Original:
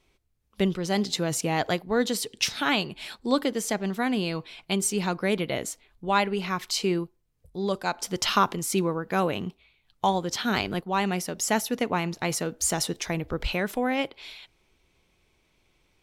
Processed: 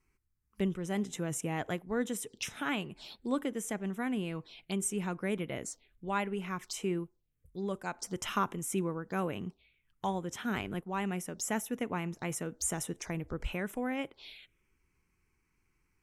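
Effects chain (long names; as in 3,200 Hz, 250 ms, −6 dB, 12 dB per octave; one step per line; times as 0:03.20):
dynamic equaliser 710 Hz, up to −5 dB, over −39 dBFS, Q 0.93
phaser swept by the level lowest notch 600 Hz, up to 4,500 Hz, full sweep at −27.5 dBFS
level −6 dB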